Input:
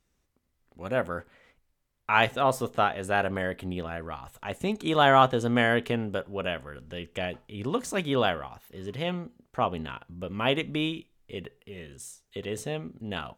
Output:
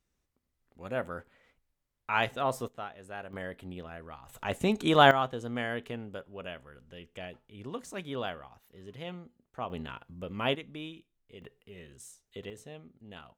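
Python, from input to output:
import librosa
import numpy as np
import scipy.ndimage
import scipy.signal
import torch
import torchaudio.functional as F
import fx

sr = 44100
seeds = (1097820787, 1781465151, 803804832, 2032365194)

y = fx.gain(x, sr, db=fx.steps((0.0, -6.0), (2.68, -16.0), (3.33, -9.0), (4.29, 1.5), (5.11, -10.5), (9.7, -4.0), (10.55, -13.0), (11.42, -6.5), (12.5, -14.0)))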